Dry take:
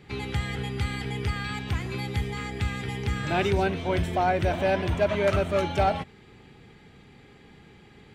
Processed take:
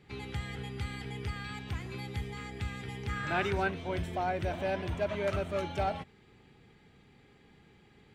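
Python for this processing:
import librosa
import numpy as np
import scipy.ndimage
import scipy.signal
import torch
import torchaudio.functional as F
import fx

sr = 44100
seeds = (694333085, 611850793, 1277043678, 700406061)

y = fx.peak_eq(x, sr, hz=1400.0, db=9.0, octaves=1.2, at=(3.09, 3.71))
y = F.gain(torch.from_numpy(y), -8.5).numpy()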